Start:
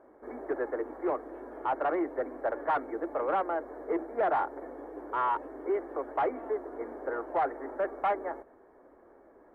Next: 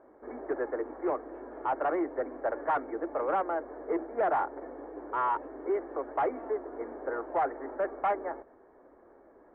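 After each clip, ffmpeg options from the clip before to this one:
-af "lowpass=2.6k"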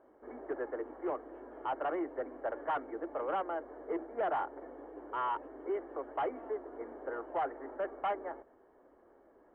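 -af "equalizer=f=3k:t=o:w=0.22:g=13,volume=-5.5dB"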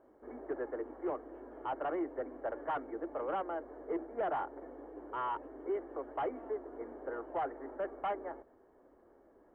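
-af "lowshelf=f=340:g=6.5,volume=-3dB"

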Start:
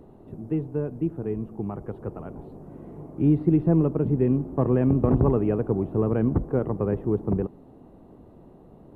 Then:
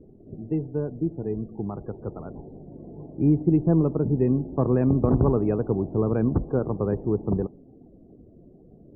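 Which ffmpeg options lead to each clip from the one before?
-af "afftdn=nr=25:nf=-46"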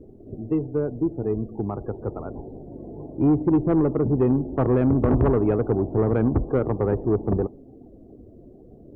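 -af "equalizer=f=170:w=2.9:g=-8.5,asoftclip=type=tanh:threshold=-18dB,volume=5.5dB"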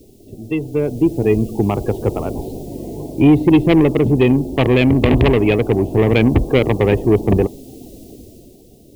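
-af "aexciter=amount=12.6:drive=9.8:freq=2.3k,dynaudnorm=f=130:g=13:m=12.5dB"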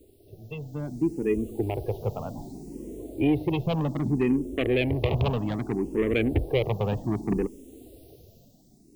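-filter_complex "[0:a]asplit=2[a][b];[b]afreqshift=0.64[c];[a][c]amix=inputs=2:normalize=1,volume=-8.5dB"

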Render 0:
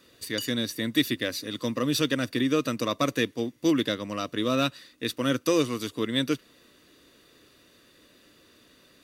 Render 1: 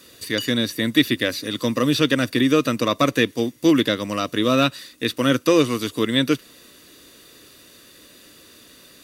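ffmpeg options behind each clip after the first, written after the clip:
-filter_complex "[0:a]equalizer=f=12k:w=0.35:g=9.5,acrossover=split=3700[a][b];[b]acompressor=threshold=-42dB:ratio=4:attack=1:release=60[c];[a][c]amix=inputs=2:normalize=0,volume=7dB"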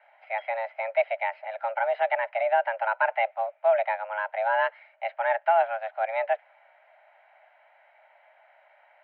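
-af "highpass=f=270:t=q:w=0.5412,highpass=f=270:t=q:w=1.307,lowpass=f=2k:t=q:w=0.5176,lowpass=f=2k:t=q:w=0.7071,lowpass=f=2k:t=q:w=1.932,afreqshift=330,volume=-4.5dB"

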